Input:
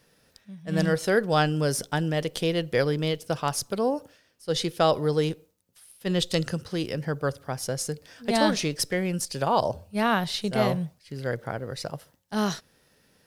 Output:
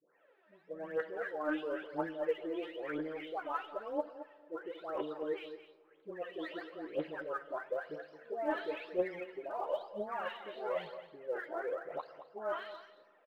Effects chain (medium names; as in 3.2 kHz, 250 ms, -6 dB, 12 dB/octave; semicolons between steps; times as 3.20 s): delay that grows with frequency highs late, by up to 466 ms; high-pass 360 Hz 24 dB/octave; harmonic-percussive split percussive -3 dB; reverse; compression 6:1, threshold -36 dBFS, peak gain reduction 15.5 dB; reverse; Gaussian low-pass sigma 3.9 samples; phaser 1 Hz, delay 3.4 ms, feedback 72%; doubling 13 ms -12 dB; delay 221 ms -12.5 dB; on a send at -17 dB: reverberation RT60 2.1 s, pre-delay 5 ms; on the sum: trim -1 dB